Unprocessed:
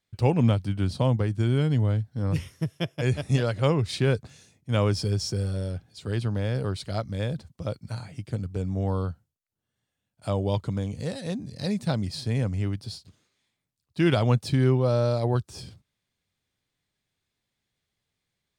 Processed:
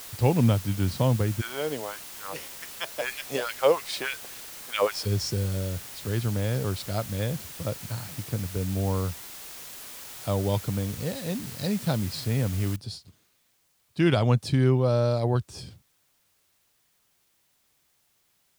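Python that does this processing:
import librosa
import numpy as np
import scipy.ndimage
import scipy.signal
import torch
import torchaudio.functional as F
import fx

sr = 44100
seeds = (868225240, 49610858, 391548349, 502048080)

y = fx.filter_lfo_highpass(x, sr, shape='sine', hz=fx.line((1.4, 1.0), (5.05, 6.4)), low_hz=460.0, high_hz=2400.0, q=2.2, at=(1.4, 5.05), fade=0.02)
y = fx.noise_floor_step(y, sr, seeds[0], at_s=12.76, before_db=-42, after_db=-69, tilt_db=0.0)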